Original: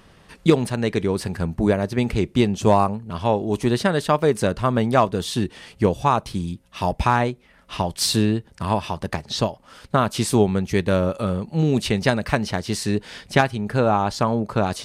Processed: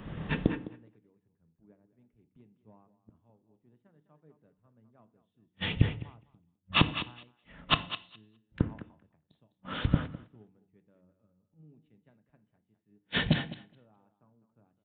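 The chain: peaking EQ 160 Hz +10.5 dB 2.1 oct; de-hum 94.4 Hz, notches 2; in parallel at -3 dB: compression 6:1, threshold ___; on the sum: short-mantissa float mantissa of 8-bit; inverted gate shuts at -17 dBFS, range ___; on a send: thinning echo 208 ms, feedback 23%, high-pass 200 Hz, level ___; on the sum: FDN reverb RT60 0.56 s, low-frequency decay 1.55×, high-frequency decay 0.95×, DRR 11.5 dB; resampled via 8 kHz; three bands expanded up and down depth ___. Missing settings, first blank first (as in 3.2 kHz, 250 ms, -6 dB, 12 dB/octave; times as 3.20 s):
-25 dBFS, -41 dB, -9 dB, 100%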